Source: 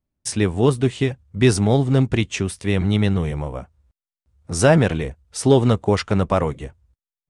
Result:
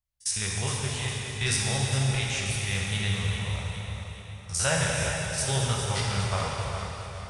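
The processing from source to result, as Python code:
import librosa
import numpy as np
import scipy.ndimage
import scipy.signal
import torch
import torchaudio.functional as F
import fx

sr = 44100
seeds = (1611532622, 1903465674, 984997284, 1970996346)

y = fx.spec_steps(x, sr, hold_ms=50)
y = fx.tone_stack(y, sr, knobs='10-0-10')
y = fx.echo_feedback(y, sr, ms=410, feedback_pct=46, wet_db=-10)
y = fx.rev_plate(y, sr, seeds[0], rt60_s=3.6, hf_ratio=0.9, predelay_ms=0, drr_db=-3.0)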